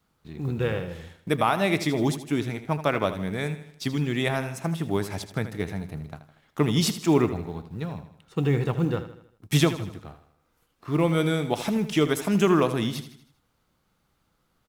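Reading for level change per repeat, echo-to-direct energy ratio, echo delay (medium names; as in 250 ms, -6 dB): -6.5 dB, -11.0 dB, 79 ms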